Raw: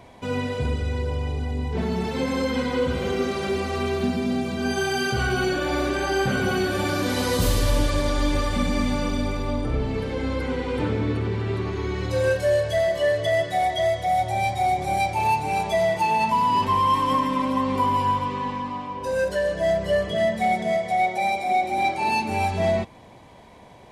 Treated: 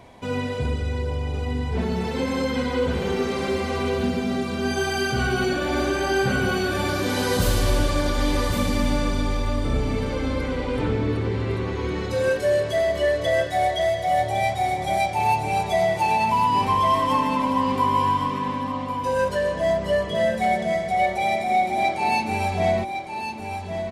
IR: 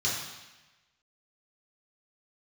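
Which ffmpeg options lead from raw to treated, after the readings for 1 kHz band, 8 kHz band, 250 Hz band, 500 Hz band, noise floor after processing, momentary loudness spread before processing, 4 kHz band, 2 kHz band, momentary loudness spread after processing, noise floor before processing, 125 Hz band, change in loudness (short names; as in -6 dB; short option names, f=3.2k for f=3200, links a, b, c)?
+0.5 dB, +0.5 dB, +0.5 dB, +0.5 dB, -30 dBFS, 6 LU, +0.5 dB, +1.0 dB, 6 LU, -47 dBFS, +0.5 dB, +0.5 dB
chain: -af "aecho=1:1:1107:0.422"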